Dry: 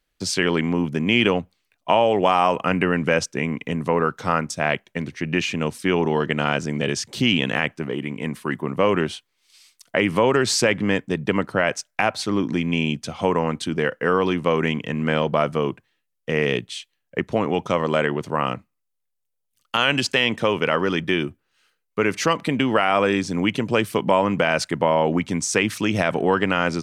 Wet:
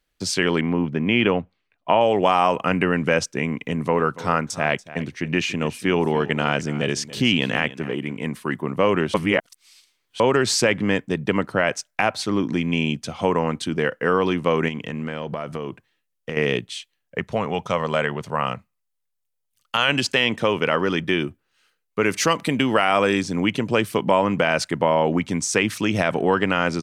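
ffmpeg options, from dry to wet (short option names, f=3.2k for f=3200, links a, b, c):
-filter_complex "[0:a]asettb=1/sr,asplit=3[a][b][c];[a]atrim=end=0.614[d];[b]atrim=start=0.61:end=2.01,asetpts=PTS-STARTPTS,afade=t=in:d=0.004:c=qsin,afade=t=out:st=1.396:d=0.004:c=qsin,lowpass=2.9k[e];[c]atrim=start=2.006[f];[d][e]acrossfade=d=0.004:c1=hsin:c2=qsin[g];[g][f]acrossfade=d=0.004:c1=qsin:c2=hsin,asplit=3[h][i][j];[h]afade=t=out:st=3.77:d=0.02[k];[i]aecho=1:1:286:0.15,afade=t=in:st=3.77:d=0.02,afade=t=out:st=8.16:d=0.02[l];[j]afade=t=in:st=8.16:d=0.02[m];[k][l][m]amix=inputs=3:normalize=0,asettb=1/sr,asplit=3[n][o][p];[n]atrim=end=14.684[q];[o]atrim=start=14.68:end=16.37,asetpts=PTS-STARTPTS,afade=t=in:d=0.004:c=qsin,afade=t=out:st=1.686:d=0.004:c=qsin,acompressor=threshold=-24dB:ratio=6:attack=3.2:release=140:knee=1:detection=peak[r];[p]atrim=start=16.366[s];[q][r]acrossfade=d=0.004:c1=hsin:c2=qsin[t];[t][s]acrossfade=d=0.004:c1=qsin:c2=hsin,asettb=1/sr,asplit=3[u][v][w];[u]atrim=end=17.184[x];[v]atrim=start=17.18:end=19.89,asetpts=PTS-STARTPTS,afade=t=in:d=0.004:c=qsin,afade=t=out:st=2.706:d=0.004:c=qsin,equalizer=f=310:w=2.2:g=-10.5[y];[w]atrim=start=19.886[z];[x][y]acrossfade=d=0.004:c1=hsin:c2=qsin[aa];[aa][z]acrossfade=d=0.004:c1=qsin:c2=hsin,asettb=1/sr,asplit=3[ab][ac][ad];[ab]atrim=end=22.034[ae];[ac]atrim=start=22.03:end=23.23,asetpts=PTS-STARTPTS,afade=t=in:d=0.004:c=qsin,afade=t=out:st=1.196:d=0.004:c=qsin,highshelf=f=5.5k:g=8.5[af];[ad]atrim=start=23.226[ag];[ae][af]acrossfade=d=0.004:c1=hsin:c2=qsin[ah];[ah][ag]acrossfade=d=0.004:c1=qsin:c2=hsin,asplit=3[ai][aj][ak];[ai]atrim=end=9.142[al];[aj]atrim=start=9.138:end=10.202,asetpts=PTS-STARTPTS,areverse[am];[ak]atrim=start=10.198[an];[al][am]acrossfade=d=0.004:c1=hsin:c2=hsin[ao];[ao][an]acrossfade=d=0.004:c1=hsin:c2=hsin"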